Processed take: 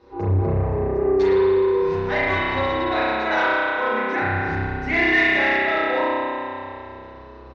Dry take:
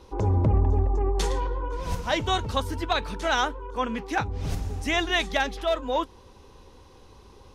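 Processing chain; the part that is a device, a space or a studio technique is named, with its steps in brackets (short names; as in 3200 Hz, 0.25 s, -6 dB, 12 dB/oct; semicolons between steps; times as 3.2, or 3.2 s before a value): 3.13–4.18 HPF 230 Hz 24 dB/oct; dynamic EQ 2100 Hz, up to +7 dB, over -46 dBFS, Q 3.7; spring tank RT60 2.7 s, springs 31 ms, chirp 30 ms, DRR -9.5 dB; barber-pole flanger into a guitar amplifier (endless flanger 8.3 ms -0.45 Hz; soft clip -12.5 dBFS, distortion -17 dB; speaker cabinet 77–4600 Hz, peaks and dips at 410 Hz +4 dB, 1800 Hz +5 dB, 3200 Hz -10 dB)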